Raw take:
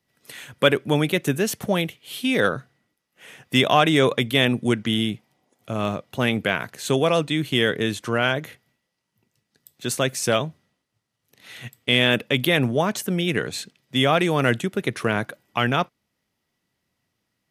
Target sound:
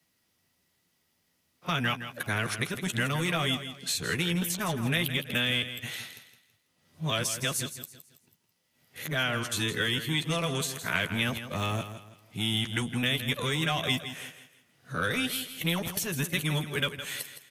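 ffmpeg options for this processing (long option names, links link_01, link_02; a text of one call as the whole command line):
ffmpeg -i in.wav -filter_complex "[0:a]areverse,aemphasis=mode=production:type=75fm,acrossover=split=130[link_01][link_02];[link_02]acompressor=threshold=-23dB:ratio=10[link_03];[link_01][link_03]amix=inputs=2:normalize=0,highshelf=frequency=7600:gain=-11,acrossover=split=180|1000[link_04][link_05][link_06];[link_05]asoftclip=type=tanh:threshold=-35.5dB[link_07];[link_04][link_07][link_06]amix=inputs=3:normalize=0,asplit=2[link_08][link_09];[link_09]adelay=12,volume=-8.5dB[link_10];[link_08][link_10]amix=inputs=2:normalize=0,asplit=2[link_11][link_12];[link_12]aecho=0:1:164|328|492|656:0.282|0.093|0.0307|0.0101[link_13];[link_11][link_13]amix=inputs=2:normalize=0" out.wav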